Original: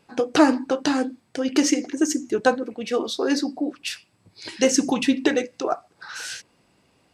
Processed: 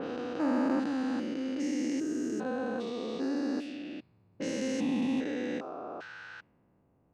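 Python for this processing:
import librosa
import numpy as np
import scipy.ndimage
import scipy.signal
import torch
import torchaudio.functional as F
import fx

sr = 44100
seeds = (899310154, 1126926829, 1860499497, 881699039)

y = fx.spec_steps(x, sr, hold_ms=400)
y = fx.env_lowpass(y, sr, base_hz=900.0, full_db=-25.0)
y = fx.bass_treble(y, sr, bass_db=5, treble_db=-8)
y = F.gain(torch.from_numpy(y), -5.5).numpy()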